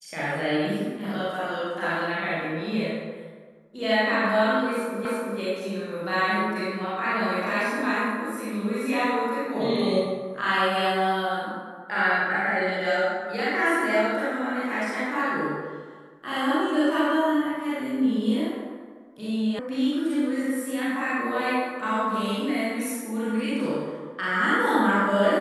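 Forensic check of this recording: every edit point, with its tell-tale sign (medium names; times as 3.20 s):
5.05 s: repeat of the last 0.34 s
19.59 s: sound stops dead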